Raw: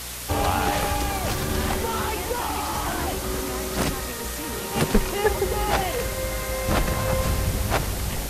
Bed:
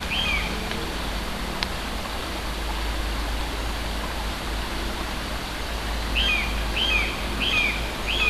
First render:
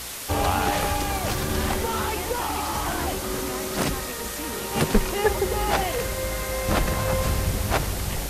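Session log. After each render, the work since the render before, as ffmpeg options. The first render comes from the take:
-af "bandreject=f=60:t=h:w=4,bandreject=f=120:t=h:w=4,bandreject=f=180:t=h:w=4,bandreject=f=240:t=h:w=4"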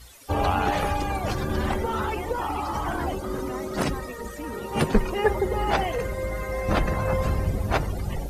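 -af "afftdn=nr=18:nf=-32"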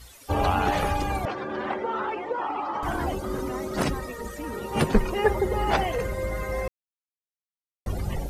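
-filter_complex "[0:a]asettb=1/sr,asplit=3[a][b][c];[a]atrim=end=1.254[d];[b]atrim=start=1.25:end=2.83,asetpts=PTS-STARTPTS,afade=t=in:d=0.004:c=qsin,afade=t=out:st=1.576:d=0.004:c=qsin,highpass=320,lowpass=2.5k[e];[c]atrim=start=2.826[f];[d][e]acrossfade=d=0.004:c1=hsin:c2=qsin[g];[g][f]acrossfade=d=0.004:c1=qsin:c2=hsin,asplit=3[h][i][j];[h]atrim=end=6.68,asetpts=PTS-STARTPTS,afade=t=out:st=6.676:d=0.004:c=hsin[k];[i]atrim=start=6.68:end=7.86,asetpts=PTS-STARTPTS,volume=0[l];[j]atrim=start=7.86,asetpts=PTS-STARTPTS,afade=t=in:d=0.004:c=hsin[m];[k][l][m]concat=n=3:v=0:a=1"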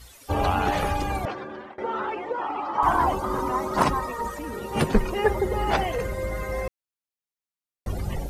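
-filter_complex "[0:a]asettb=1/sr,asplit=3[a][b][c];[a]atrim=end=2.784[d];[b]atrim=start=2.78:end=4.39,asetpts=PTS-STARTPTS,afade=t=in:d=0.004:c=qsin,afade=t=out:st=1.606:d=0.004:c=qsin,equalizer=f=1k:t=o:w=0.76:g=14.5[e];[c]atrim=start=4.386[f];[d][e]acrossfade=d=0.004:c1=hsin:c2=qsin[g];[g][f]acrossfade=d=0.004:c1=qsin:c2=hsin,asplit=2[h][i];[h]atrim=end=1.78,asetpts=PTS-STARTPTS,afade=t=out:st=1.25:d=0.53:silence=0.0630957[j];[i]atrim=start=1.78,asetpts=PTS-STARTPTS,afade=t=in:d=0.004:c=hsin:silence=0.0630957[k];[j][k]concat=n=2:v=0:a=1"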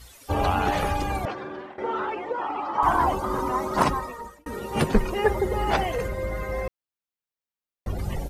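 -filter_complex "[0:a]asplit=3[a][b][c];[a]afade=t=out:st=1.43:d=0.02[d];[b]asplit=2[e][f];[f]adelay=48,volume=-7.5dB[g];[e][g]amix=inputs=2:normalize=0,afade=t=in:st=1.43:d=0.02,afade=t=out:st=2.04:d=0.02[h];[c]afade=t=in:st=2.04:d=0.02[i];[d][h][i]amix=inputs=3:normalize=0,asettb=1/sr,asplit=3[j][k][l];[j]atrim=end=6.084[m];[k]atrim=start=6.08:end=7.99,asetpts=PTS-STARTPTS,afade=t=in:d=0.004:c=qsin,afade=t=out:st=1.906:d=0.004:c=qsin,equalizer=f=8.9k:t=o:w=1.7:g=-6[n];[l]atrim=start=7.986[o];[m][n]acrossfade=d=0.004:c1=hsin:c2=qsin[p];[p][o]acrossfade=d=0.004:c1=qsin:c2=hsin,asplit=2[q][r];[q]atrim=end=4.46,asetpts=PTS-STARTPTS,afade=t=out:st=3.86:d=0.6[s];[r]atrim=start=4.46,asetpts=PTS-STARTPTS,afade=t=in:d=0.004:c=hsin[t];[s][t]concat=n=2:v=0:a=1"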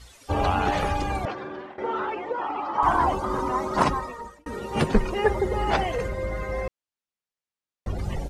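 -af "lowpass=8.4k"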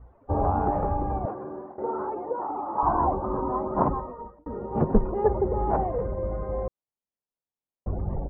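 -af "lowpass=f=1k:w=0.5412,lowpass=f=1k:w=1.3066"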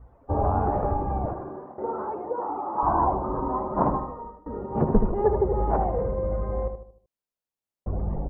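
-filter_complex "[0:a]asplit=2[a][b];[b]adelay=76,lowpass=f=1.5k:p=1,volume=-6.5dB,asplit=2[c][d];[d]adelay=76,lowpass=f=1.5k:p=1,volume=0.43,asplit=2[e][f];[f]adelay=76,lowpass=f=1.5k:p=1,volume=0.43,asplit=2[g][h];[h]adelay=76,lowpass=f=1.5k:p=1,volume=0.43,asplit=2[i][j];[j]adelay=76,lowpass=f=1.5k:p=1,volume=0.43[k];[a][c][e][g][i][k]amix=inputs=6:normalize=0"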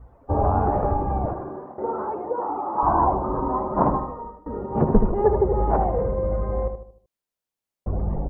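-af "volume=3dB"

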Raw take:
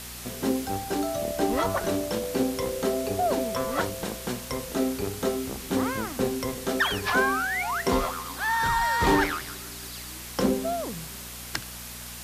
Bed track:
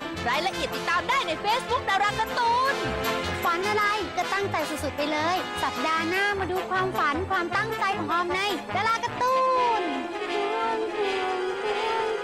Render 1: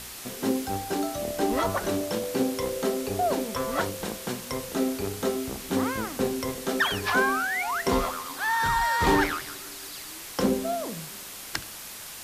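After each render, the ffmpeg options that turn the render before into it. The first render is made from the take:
-af "bandreject=f=60:t=h:w=4,bandreject=f=120:t=h:w=4,bandreject=f=180:t=h:w=4,bandreject=f=240:t=h:w=4,bandreject=f=300:t=h:w=4,bandreject=f=360:t=h:w=4,bandreject=f=420:t=h:w=4,bandreject=f=480:t=h:w=4,bandreject=f=540:t=h:w=4,bandreject=f=600:t=h:w=4,bandreject=f=660:t=h:w=4"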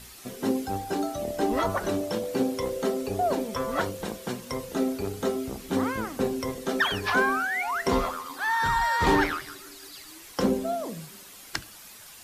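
-af "afftdn=nr=9:nf=-41"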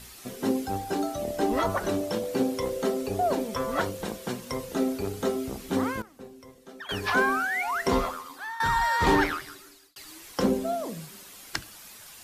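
-filter_complex "[0:a]asplit=5[a][b][c][d][e];[a]atrim=end=6.02,asetpts=PTS-STARTPTS,afade=t=out:st=5.59:d=0.43:c=log:silence=0.125893[f];[b]atrim=start=6.02:end=6.89,asetpts=PTS-STARTPTS,volume=-18dB[g];[c]atrim=start=6.89:end=8.6,asetpts=PTS-STARTPTS,afade=t=in:d=0.43:c=log:silence=0.125893,afade=t=out:st=1.08:d=0.63:silence=0.188365[h];[d]atrim=start=8.6:end=9.96,asetpts=PTS-STARTPTS,afade=t=in:d=0.004:c=hsin:silence=0.188365,afade=t=out:st=0.53:d=0.83:c=qsin[i];[e]atrim=start=9.96,asetpts=PTS-STARTPTS,afade=t=in:d=0.004:c=hsin[j];[f][g][h][i][j]concat=n=5:v=0:a=1"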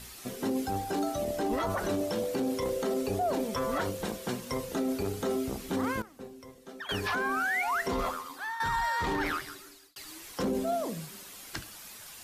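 -af "alimiter=limit=-22.5dB:level=0:latency=1:release=11"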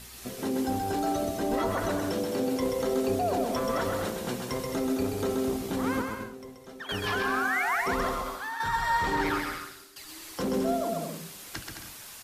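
-af "aecho=1:1:130|214.5|269.4|305.1|328.3:0.631|0.398|0.251|0.158|0.1"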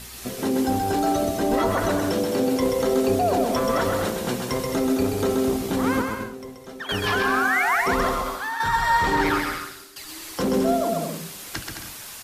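-af "volume=6.5dB"

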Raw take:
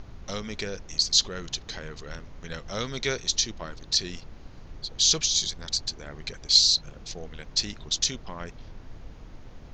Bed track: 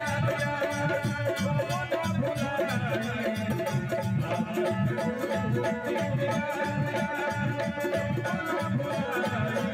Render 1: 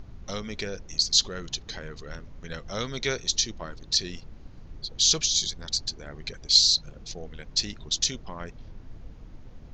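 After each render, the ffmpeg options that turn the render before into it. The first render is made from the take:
-af "afftdn=nr=6:nf=-46"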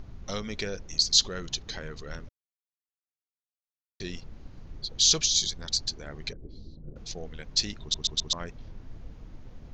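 -filter_complex "[0:a]asettb=1/sr,asplit=3[a][b][c];[a]atrim=end=6.334[d];[b]atrim=start=6.33:end=6.96,asetpts=PTS-STARTPTS,afade=t=in:d=0.004:c=qsin,afade=t=out:st=0.626:d=0.004:c=qsin,lowpass=f=360:t=q:w=1.7[e];[c]atrim=start=6.956[f];[d][e]acrossfade=d=0.004:c1=hsin:c2=qsin[g];[g][f]acrossfade=d=0.004:c1=qsin:c2=hsin,asplit=7[h][i][j][k][l][m][n];[h]atrim=end=2.29,asetpts=PTS-STARTPTS,afade=t=out:st=2.286:d=0.004:c=hsin[o];[i]atrim=start=2.29:end=4,asetpts=PTS-STARTPTS,volume=0[p];[j]atrim=start=4:end=7.942,asetpts=PTS-STARTPTS,afade=t=in:d=0.004:c=hsin[q];[k]atrim=start=7.808:end=7.942[r];[l]atrim=start=7.808:end=7.942[s];[m]atrim=start=7.808:end=7.942[t];[n]atrim=start=8.328[u];[o][p][q]concat=n=3:v=0:a=1[v];[v][r]acrossfade=d=0.004:c1=hsin:c2=hsin[w];[w][s]acrossfade=d=0.004:c1=hsin:c2=hsin[x];[x][t]acrossfade=d=0.004:c1=hsin:c2=hsin[y];[y][u]acrossfade=d=0.004:c1=hsin:c2=hsin"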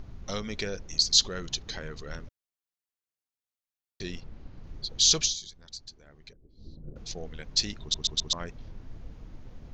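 -filter_complex "[0:a]asettb=1/sr,asplit=3[a][b][c];[a]atrim=end=4.114[d];[b]atrim=start=4.11:end=4.64,asetpts=PTS-STARTPTS,afade=t=in:d=0.004:c=qsin,afade=t=out:st=0.526:d=0.004:c=qsin,adynamicsmooth=sensitivity=4.5:basefreq=6.3k[e];[c]atrim=start=4.636[f];[d][e]acrossfade=d=0.004:c1=hsin:c2=qsin[g];[g][f]acrossfade=d=0.004:c1=qsin:c2=hsin,asplit=3[h][i][j];[h]atrim=end=5.36,asetpts=PTS-STARTPTS,afade=t=out:st=5.22:d=0.14:c=qsin:silence=0.188365[k];[i]atrim=start=5.36:end=6.57,asetpts=PTS-STARTPTS,volume=-14.5dB[l];[j]atrim=start=6.57,asetpts=PTS-STARTPTS,afade=t=in:d=0.14:c=qsin:silence=0.188365[m];[k][l][m]concat=n=3:v=0:a=1"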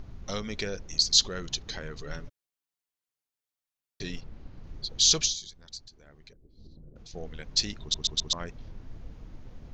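-filter_complex "[0:a]asettb=1/sr,asplit=3[a][b][c];[a]atrim=end=1.994[d];[b]atrim=start=1.99:end=4.21,asetpts=PTS-STARTPTS,afade=t=in:d=0.004:c=qsin,afade=t=out:st=2.216:d=0.004:c=qsin,aecho=1:1:7:0.48,atrim=end_sample=97902[e];[c]atrim=start=4.206[f];[d][e]acrossfade=d=0.004:c1=hsin:c2=qsin[g];[g][f]acrossfade=d=0.004:c1=qsin:c2=hsin,asettb=1/sr,asplit=3[h][i][j];[h]atrim=end=5.874[k];[i]atrim=start=5.87:end=7.14,asetpts=PTS-STARTPTS,afade=t=in:d=0.004:c=qsin,afade=t=out:st=1.266:d=0.004:c=qsin,acompressor=threshold=-45dB:ratio=6:attack=3.2:release=140:knee=1:detection=peak[l];[j]atrim=start=7.136[m];[k][l]acrossfade=d=0.004:c1=hsin:c2=qsin[n];[n][m]acrossfade=d=0.004:c1=qsin:c2=hsin"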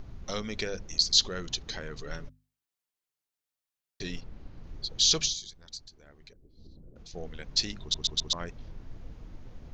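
-filter_complex "[0:a]acrossover=split=6500[a][b];[b]acompressor=threshold=-40dB:ratio=4:attack=1:release=60[c];[a][c]amix=inputs=2:normalize=0,bandreject=f=50:t=h:w=6,bandreject=f=100:t=h:w=6,bandreject=f=150:t=h:w=6,bandreject=f=200:t=h:w=6,bandreject=f=250:t=h:w=6"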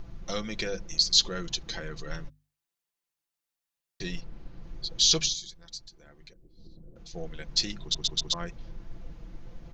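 -af "aecho=1:1:5.9:0.55"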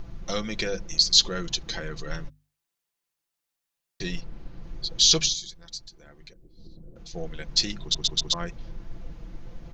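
-af "volume=3.5dB"

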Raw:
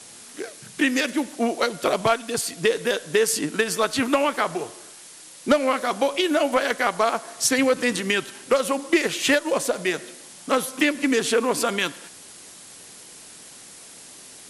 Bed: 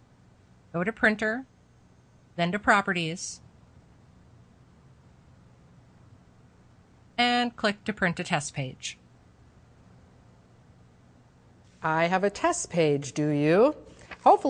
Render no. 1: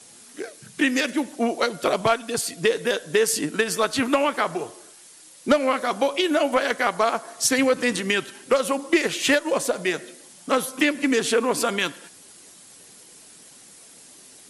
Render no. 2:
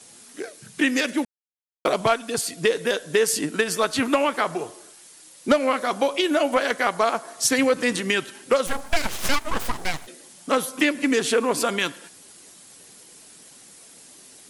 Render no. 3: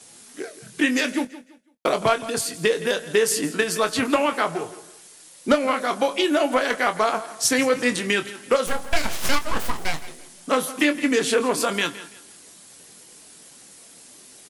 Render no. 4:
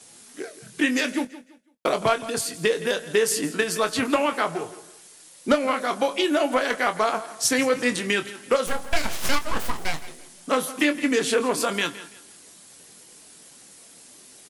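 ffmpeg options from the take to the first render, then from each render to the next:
-af "afftdn=nr=6:nf=-45"
-filter_complex "[0:a]asplit=3[a][b][c];[a]afade=t=out:st=8.66:d=0.02[d];[b]aeval=exprs='abs(val(0))':c=same,afade=t=in:st=8.66:d=0.02,afade=t=out:st=10.06:d=0.02[e];[c]afade=t=in:st=10.06:d=0.02[f];[d][e][f]amix=inputs=3:normalize=0,asplit=3[g][h][i];[g]atrim=end=1.25,asetpts=PTS-STARTPTS,afade=t=out:st=1.246:d=0.004:c=hsin[j];[h]atrim=start=1.25:end=1.85,asetpts=PTS-STARTPTS,volume=0[k];[i]atrim=start=1.85,asetpts=PTS-STARTPTS,afade=t=in:d=0.004:c=hsin[l];[j][k][l]concat=n=3:v=0:a=1"
-filter_complex "[0:a]asplit=2[a][b];[b]adelay=24,volume=-9dB[c];[a][c]amix=inputs=2:normalize=0,aecho=1:1:167|334|501:0.15|0.0449|0.0135"
-af "volume=-1.5dB"

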